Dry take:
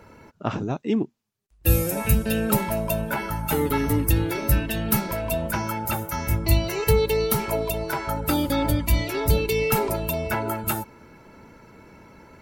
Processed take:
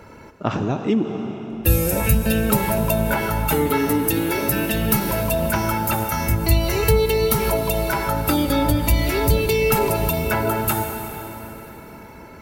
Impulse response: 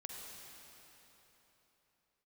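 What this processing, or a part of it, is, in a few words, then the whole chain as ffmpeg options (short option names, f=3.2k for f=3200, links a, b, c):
ducked reverb: -filter_complex "[0:a]asettb=1/sr,asplit=3[a][b][c];[a]atrim=end=3.694[d];[b]atrim=start=3.69:end=4.72,asetpts=PTS-STARTPTS,afade=t=in:d=0.004:c=qsin,afade=t=out:st=1.026:d=0.004:c=qsin,highpass=180[e];[c]atrim=start=4.716[f];[d][e]acrossfade=d=0.004:c1=hsin:c2=qsin[g];[g][f]acrossfade=d=0.004:c1=qsin:c2=hsin,asplit=3[h][i][j];[1:a]atrim=start_sample=2205[k];[i][k]afir=irnorm=-1:irlink=0[l];[j]apad=whole_len=547523[m];[l][m]sidechaincompress=threshold=-25dB:ratio=8:attack=16:release=144,volume=5dB[n];[h][n]amix=inputs=2:normalize=0"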